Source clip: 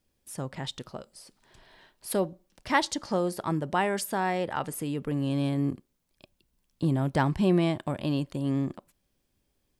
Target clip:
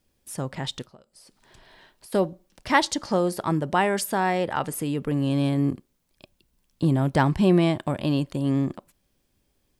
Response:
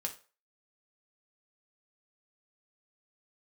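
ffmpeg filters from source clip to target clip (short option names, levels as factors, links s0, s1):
-filter_complex "[0:a]asplit=3[s0][s1][s2];[s0]afade=t=out:st=0.85:d=0.02[s3];[s1]acompressor=threshold=0.00251:ratio=8,afade=t=in:st=0.85:d=0.02,afade=t=out:st=2.12:d=0.02[s4];[s2]afade=t=in:st=2.12:d=0.02[s5];[s3][s4][s5]amix=inputs=3:normalize=0,volume=1.68"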